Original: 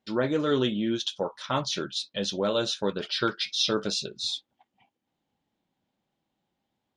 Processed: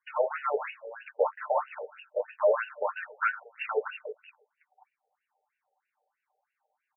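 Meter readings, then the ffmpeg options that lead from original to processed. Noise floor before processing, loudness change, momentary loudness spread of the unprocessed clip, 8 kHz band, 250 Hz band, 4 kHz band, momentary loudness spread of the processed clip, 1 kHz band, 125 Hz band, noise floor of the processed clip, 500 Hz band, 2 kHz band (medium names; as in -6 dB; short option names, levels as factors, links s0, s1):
-82 dBFS, -3.0 dB, 6 LU, under -40 dB, under -30 dB, -25.5 dB, 16 LU, +2.5 dB, under -40 dB, under -85 dBFS, 0.0 dB, +1.5 dB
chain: -filter_complex "[0:a]lowshelf=f=150:g=7.5,aecho=1:1:6.7:0.57,bandreject=f=45.07:t=h:w=4,bandreject=f=90.14:t=h:w=4,bandreject=f=135.21:t=h:w=4,bandreject=f=180.28:t=h:w=4,bandreject=f=225.35:t=h:w=4,bandreject=f=270.42:t=h:w=4,asoftclip=type=hard:threshold=0.0841,asplit=2[s0][s1];[s1]adelay=113,lowpass=f=1300:p=1,volume=0.133,asplit=2[s2][s3];[s3]adelay=113,lowpass=f=1300:p=1,volume=0.5,asplit=2[s4][s5];[s5]adelay=113,lowpass=f=1300:p=1,volume=0.5,asplit=2[s6][s7];[s7]adelay=113,lowpass=f=1300:p=1,volume=0.5[s8];[s2][s4][s6][s8]amix=inputs=4:normalize=0[s9];[s0][s9]amix=inputs=2:normalize=0,afftfilt=real='re*between(b*sr/1024,590*pow(2100/590,0.5+0.5*sin(2*PI*3.1*pts/sr))/1.41,590*pow(2100/590,0.5+0.5*sin(2*PI*3.1*pts/sr))*1.41)':imag='im*between(b*sr/1024,590*pow(2100/590,0.5+0.5*sin(2*PI*3.1*pts/sr))/1.41,590*pow(2100/590,0.5+0.5*sin(2*PI*3.1*pts/sr))*1.41)':win_size=1024:overlap=0.75,volume=2.11"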